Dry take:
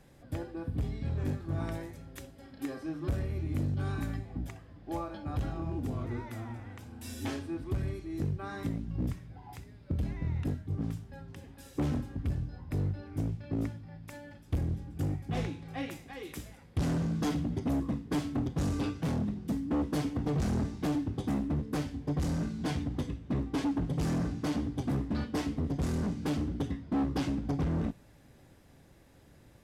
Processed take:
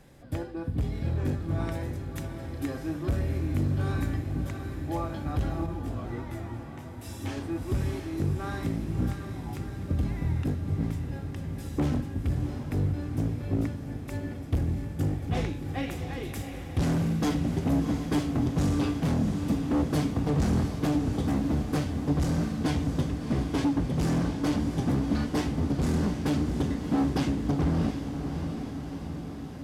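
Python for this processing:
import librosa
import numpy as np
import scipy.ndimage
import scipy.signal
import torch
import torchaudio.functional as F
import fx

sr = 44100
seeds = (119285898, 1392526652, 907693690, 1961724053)

y = fx.echo_diffused(x, sr, ms=683, feedback_pct=67, wet_db=-7.5)
y = fx.detune_double(y, sr, cents=11, at=(5.66, 7.37))
y = y * librosa.db_to_amplitude(4.0)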